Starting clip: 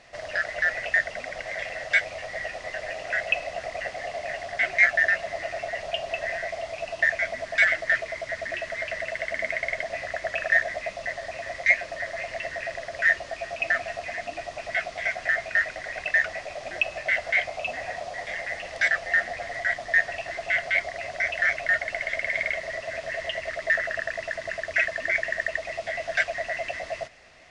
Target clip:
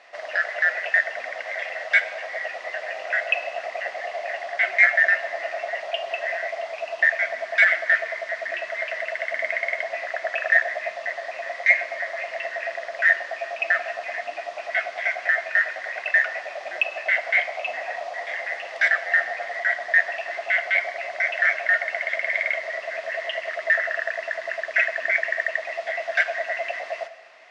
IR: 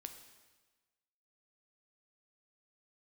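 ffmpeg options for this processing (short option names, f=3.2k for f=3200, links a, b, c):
-filter_complex "[0:a]highpass=660,aemphasis=mode=reproduction:type=75fm,asplit=2[a][b];[1:a]atrim=start_sample=2205[c];[b][c]afir=irnorm=-1:irlink=0,volume=7dB[d];[a][d]amix=inputs=2:normalize=0,volume=-2dB"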